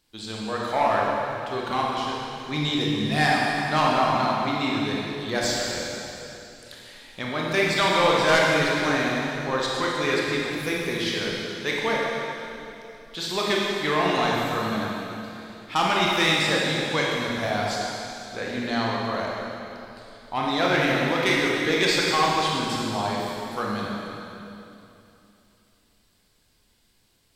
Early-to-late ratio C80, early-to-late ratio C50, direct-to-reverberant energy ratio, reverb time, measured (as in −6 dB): −0.5 dB, −2.0 dB, −4.0 dB, 2.9 s